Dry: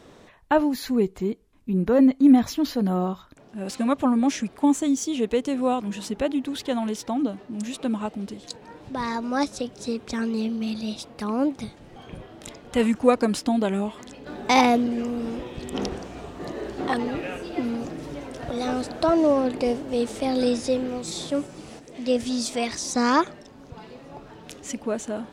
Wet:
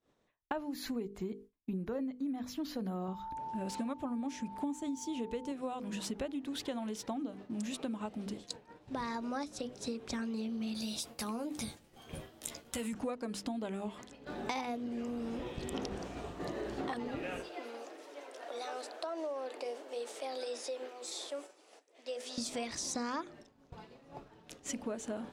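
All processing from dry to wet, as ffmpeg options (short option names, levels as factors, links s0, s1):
-filter_complex "[0:a]asettb=1/sr,asplit=3[s0][s1][s2];[s0]atrim=end=3.084[s3];[s1]atrim=start=3.08:end=5.52,asetpts=PTS-STARTPTS,afade=t=in:d=0.004:c=qsin,afade=t=out:st=2.436:d=0.004:c=qsin,lowshelf=f=230:g=6.5,aeval=exprs='val(0)+0.02*sin(2*PI*890*n/s)':c=same[s4];[s2]atrim=start=5.516[s5];[s3][s4]acrossfade=d=0.004:c1=hsin:c2=qsin[s6];[s6][s5]acrossfade=d=0.004:c1=qsin:c2=hsin,asettb=1/sr,asplit=3[s7][s8][s9];[s7]atrim=end=10.744[s10];[s8]atrim=start=10.74:end=12.93,asetpts=PTS-STARTPTS,afade=t=in:d=0.004:c=qsin,afade=t=out:st=2.186:d=0.004:c=qsin,aemphasis=mode=production:type=75fm,acompressor=threshold=0.0355:ratio=3:attack=3.2:release=140:knee=1:detection=peak,asplit=2[s11][s12];[s12]adelay=13,volume=0.422[s13];[s11][s13]amix=inputs=2:normalize=0,atrim=end_sample=96579[s14];[s9]atrim=start=12.926[s15];[s10][s14]acrossfade=d=0.004:c1=hsin:c2=qsin[s16];[s16][s15]acrossfade=d=0.004:c1=qsin:c2=hsin,asettb=1/sr,asplit=3[s17][s18][s19];[s17]atrim=end=17.414[s20];[s18]atrim=start=17.41:end=22.38,asetpts=PTS-STARTPTS,afade=t=in:d=0.004:c=qsin,afade=t=out:st=4.966:d=0.004:c=qsin,highpass=f=410:w=0.5412,highpass=f=410:w=1.3066,acompressor=threshold=0.0141:ratio=2:attack=3.2:release=140:knee=1:detection=peak[s21];[s19]atrim=start=22.376[s22];[s20][s21]acrossfade=d=0.004:c1=hsin:c2=qsin[s23];[s23][s22]acrossfade=d=0.004:c1=qsin:c2=hsin,bandreject=f=50:t=h:w=6,bandreject=f=100:t=h:w=6,bandreject=f=150:t=h:w=6,bandreject=f=200:t=h:w=6,bandreject=f=250:t=h:w=6,bandreject=f=300:t=h:w=6,bandreject=f=350:t=h:w=6,bandreject=f=400:t=h:w=6,bandreject=f=450:t=h:w=6,bandreject=f=500:t=h:w=6,agate=range=0.0224:threshold=0.0158:ratio=3:detection=peak,acompressor=threshold=0.0282:ratio=12,volume=0.668"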